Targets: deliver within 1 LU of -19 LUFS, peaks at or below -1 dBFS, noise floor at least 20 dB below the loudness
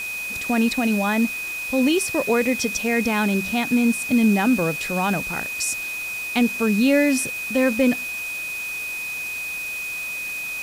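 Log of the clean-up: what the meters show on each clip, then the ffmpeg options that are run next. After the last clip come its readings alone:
steady tone 2.5 kHz; tone level -27 dBFS; noise floor -30 dBFS; noise floor target -42 dBFS; loudness -21.5 LUFS; peak level -8.0 dBFS; loudness target -19.0 LUFS
-> -af "bandreject=f=2500:w=30"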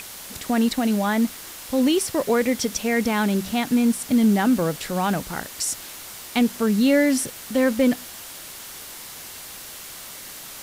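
steady tone not found; noise floor -39 dBFS; noise floor target -42 dBFS
-> -af "afftdn=nr=6:nf=-39"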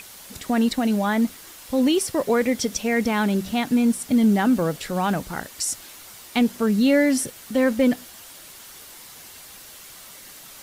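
noise floor -44 dBFS; loudness -22.0 LUFS; peak level -9.0 dBFS; loudness target -19.0 LUFS
-> -af "volume=1.41"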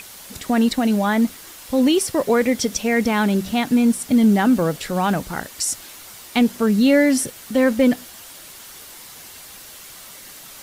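loudness -19.0 LUFS; peak level -6.0 dBFS; noise floor -41 dBFS

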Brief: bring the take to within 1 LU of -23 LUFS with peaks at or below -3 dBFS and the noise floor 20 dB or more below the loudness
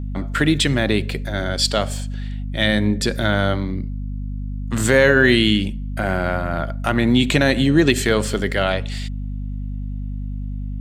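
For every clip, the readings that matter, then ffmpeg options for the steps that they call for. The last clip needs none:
hum 50 Hz; highest harmonic 250 Hz; hum level -24 dBFS; loudness -19.0 LUFS; peak level -1.0 dBFS; loudness target -23.0 LUFS
-> -af "bandreject=f=50:t=h:w=4,bandreject=f=100:t=h:w=4,bandreject=f=150:t=h:w=4,bandreject=f=200:t=h:w=4,bandreject=f=250:t=h:w=4"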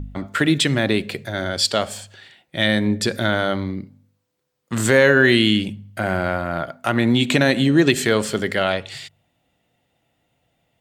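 hum not found; loudness -19.0 LUFS; peak level -1.5 dBFS; loudness target -23.0 LUFS
-> -af "volume=0.631"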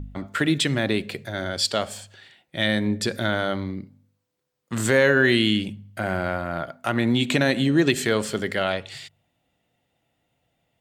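loudness -23.0 LUFS; peak level -5.5 dBFS; noise floor -76 dBFS

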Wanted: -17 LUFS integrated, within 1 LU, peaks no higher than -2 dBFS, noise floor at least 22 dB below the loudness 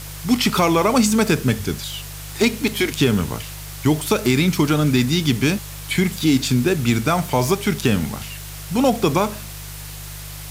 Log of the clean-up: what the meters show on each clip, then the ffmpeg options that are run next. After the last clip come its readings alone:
hum 50 Hz; highest harmonic 150 Hz; hum level -33 dBFS; noise floor -34 dBFS; noise floor target -42 dBFS; loudness -19.5 LUFS; peak level -5.0 dBFS; loudness target -17.0 LUFS
-> -af "bandreject=f=50:t=h:w=4,bandreject=f=100:t=h:w=4,bandreject=f=150:t=h:w=4"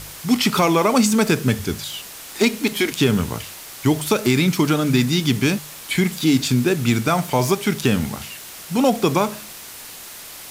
hum not found; noise floor -38 dBFS; noise floor target -42 dBFS
-> -af "afftdn=nr=6:nf=-38"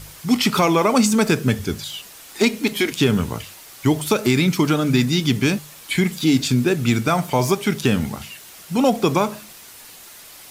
noise floor -42 dBFS; loudness -19.5 LUFS; peak level -5.0 dBFS; loudness target -17.0 LUFS
-> -af "volume=1.33"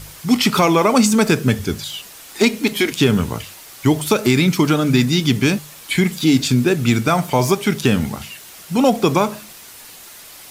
loudness -17.0 LUFS; peak level -2.5 dBFS; noise floor -40 dBFS

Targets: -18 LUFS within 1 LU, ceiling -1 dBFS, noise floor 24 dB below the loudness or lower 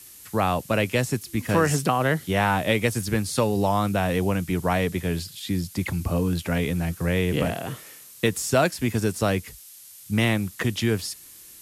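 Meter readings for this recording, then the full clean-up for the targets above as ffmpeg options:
noise floor -46 dBFS; noise floor target -49 dBFS; loudness -24.5 LUFS; peak level -8.5 dBFS; loudness target -18.0 LUFS
-> -af "afftdn=nr=6:nf=-46"
-af "volume=2.11"

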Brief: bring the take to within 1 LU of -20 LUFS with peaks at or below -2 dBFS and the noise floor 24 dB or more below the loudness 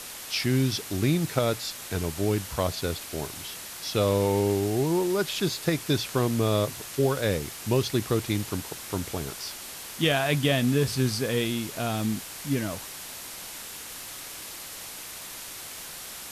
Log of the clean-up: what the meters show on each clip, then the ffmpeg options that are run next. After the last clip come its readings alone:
noise floor -40 dBFS; noise floor target -52 dBFS; loudness -28.0 LUFS; peak level -9.5 dBFS; loudness target -20.0 LUFS
-> -af "afftdn=nr=12:nf=-40"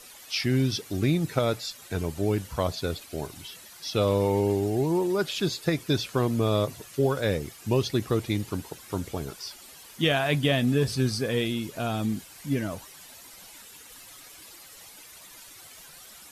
noise floor -49 dBFS; noise floor target -52 dBFS
-> -af "afftdn=nr=6:nf=-49"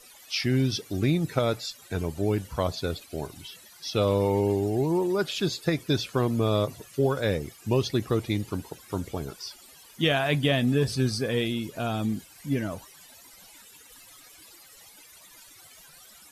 noise floor -52 dBFS; loudness -27.5 LUFS; peak level -10.0 dBFS; loudness target -20.0 LUFS
-> -af "volume=2.37"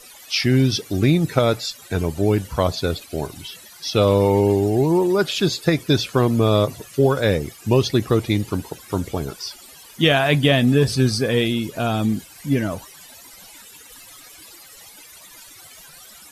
loudness -20.0 LUFS; peak level -2.5 dBFS; noise floor -45 dBFS

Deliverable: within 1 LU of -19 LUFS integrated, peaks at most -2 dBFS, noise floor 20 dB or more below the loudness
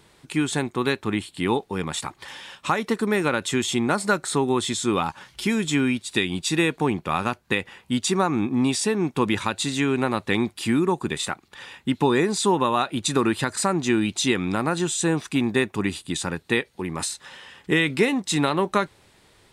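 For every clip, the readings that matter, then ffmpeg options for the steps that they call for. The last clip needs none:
loudness -24.0 LUFS; peak level -8.5 dBFS; loudness target -19.0 LUFS
-> -af "volume=1.78"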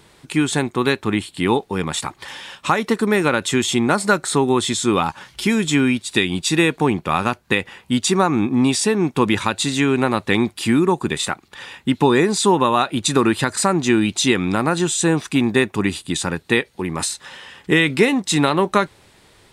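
loudness -19.0 LUFS; peak level -3.5 dBFS; noise floor -53 dBFS

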